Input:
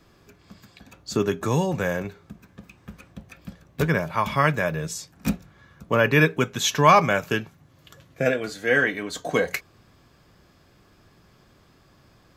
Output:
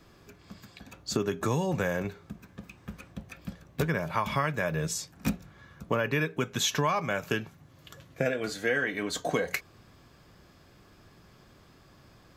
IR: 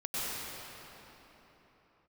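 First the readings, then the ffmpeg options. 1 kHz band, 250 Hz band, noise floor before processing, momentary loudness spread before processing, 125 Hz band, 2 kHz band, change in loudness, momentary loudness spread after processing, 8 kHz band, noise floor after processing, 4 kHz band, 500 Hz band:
-9.5 dB, -6.0 dB, -58 dBFS, 13 LU, -6.5 dB, -7.5 dB, -7.5 dB, 18 LU, -3.0 dB, -58 dBFS, -4.0 dB, -7.0 dB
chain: -af "acompressor=threshold=0.0631:ratio=8"

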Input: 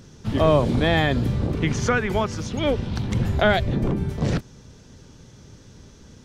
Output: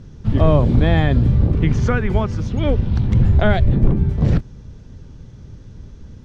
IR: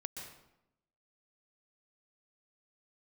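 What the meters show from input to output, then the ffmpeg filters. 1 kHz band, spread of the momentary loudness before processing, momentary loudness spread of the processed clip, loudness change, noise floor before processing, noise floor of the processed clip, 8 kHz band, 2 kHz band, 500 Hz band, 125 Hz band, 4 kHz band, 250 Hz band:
-1.0 dB, 7 LU, 6 LU, +5.0 dB, -48 dBFS, -40 dBFS, no reading, -2.0 dB, +0.5 dB, +8.5 dB, -4.5 dB, +4.0 dB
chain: -af "aemphasis=mode=reproduction:type=bsi,volume=0.891"

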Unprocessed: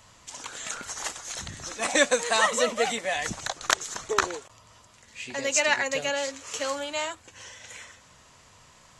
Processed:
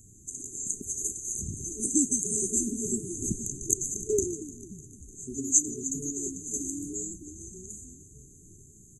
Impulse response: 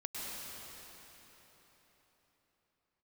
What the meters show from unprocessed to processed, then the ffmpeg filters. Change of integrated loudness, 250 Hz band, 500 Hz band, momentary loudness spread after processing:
-2.0 dB, +5.5 dB, -7.5 dB, 19 LU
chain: -filter_complex "[0:a]asplit=7[s0][s1][s2][s3][s4][s5][s6];[s1]adelay=301,afreqshift=-120,volume=0.141[s7];[s2]adelay=602,afreqshift=-240,volume=0.0902[s8];[s3]adelay=903,afreqshift=-360,volume=0.0575[s9];[s4]adelay=1204,afreqshift=-480,volume=0.0372[s10];[s5]adelay=1505,afreqshift=-600,volume=0.0237[s11];[s6]adelay=1806,afreqshift=-720,volume=0.0151[s12];[s0][s7][s8][s9][s10][s11][s12]amix=inputs=7:normalize=0,afftfilt=real='re*(1-between(b*sr/4096,440,6100))':imag='im*(1-between(b*sr/4096,440,6100))':win_size=4096:overlap=0.75,volume=1.78"

